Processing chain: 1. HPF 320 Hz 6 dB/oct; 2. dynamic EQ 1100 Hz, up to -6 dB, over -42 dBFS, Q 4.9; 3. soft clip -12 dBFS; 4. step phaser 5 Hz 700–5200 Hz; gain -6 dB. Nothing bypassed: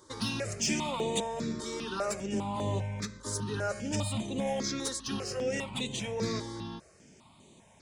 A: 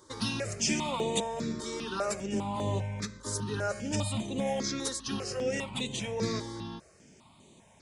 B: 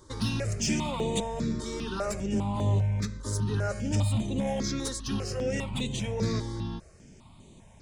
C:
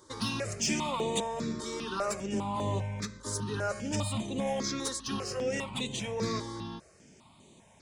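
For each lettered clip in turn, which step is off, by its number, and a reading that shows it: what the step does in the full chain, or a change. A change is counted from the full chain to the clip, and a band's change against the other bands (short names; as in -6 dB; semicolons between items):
3, distortion -24 dB; 1, 125 Hz band +9.0 dB; 2, 1 kHz band +2.0 dB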